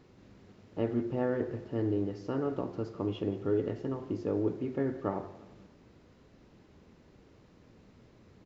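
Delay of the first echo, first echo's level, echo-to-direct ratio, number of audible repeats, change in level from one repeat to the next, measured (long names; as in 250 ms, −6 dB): 174 ms, −17.5 dB, −17.0 dB, 3, −8.0 dB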